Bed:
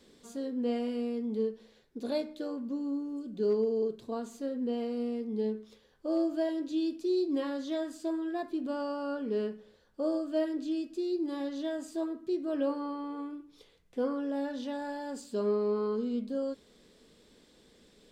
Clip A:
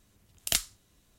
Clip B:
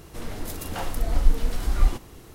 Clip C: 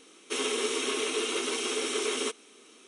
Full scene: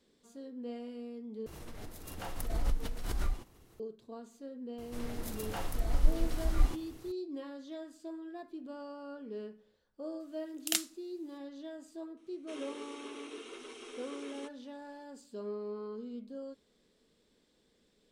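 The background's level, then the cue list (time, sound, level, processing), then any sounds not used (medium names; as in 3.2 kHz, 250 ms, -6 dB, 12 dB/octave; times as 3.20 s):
bed -10.5 dB
1.46 s: replace with B -16 dB + swell ahead of each attack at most 32 dB/s
4.78 s: add B -7.5 dB
10.20 s: add A -4 dB + steep high-pass 200 Hz 96 dB/octave
12.17 s: add C -15 dB + treble shelf 3.4 kHz -9.5 dB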